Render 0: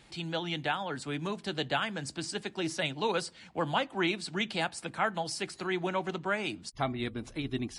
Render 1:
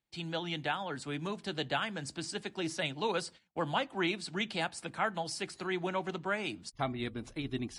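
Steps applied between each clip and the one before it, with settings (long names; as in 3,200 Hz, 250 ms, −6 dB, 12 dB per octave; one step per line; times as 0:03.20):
noise gate −47 dBFS, range −29 dB
level −2.5 dB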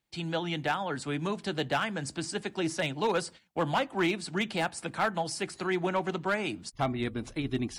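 dynamic equaliser 3,900 Hz, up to −5 dB, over −48 dBFS, Q 1
gain into a clipping stage and back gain 26.5 dB
level +5.5 dB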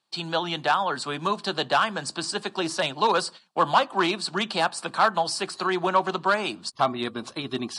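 loudspeaker in its box 250–9,900 Hz, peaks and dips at 290 Hz −8 dB, 460 Hz −4 dB, 1,100 Hz +8 dB, 2,100 Hz −9 dB, 4,300 Hz +7 dB, 6,600 Hz −4 dB
level +7 dB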